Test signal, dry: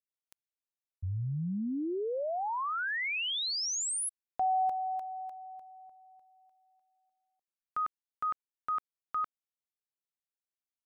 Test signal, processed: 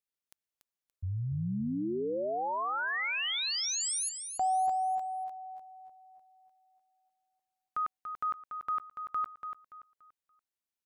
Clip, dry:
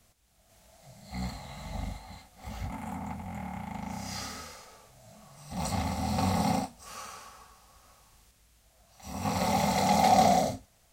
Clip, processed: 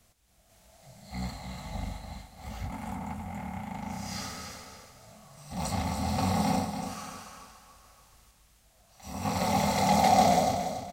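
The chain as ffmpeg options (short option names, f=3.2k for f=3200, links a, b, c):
-af "aecho=1:1:287|574|861|1148:0.398|0.123|0.0383|0.0119"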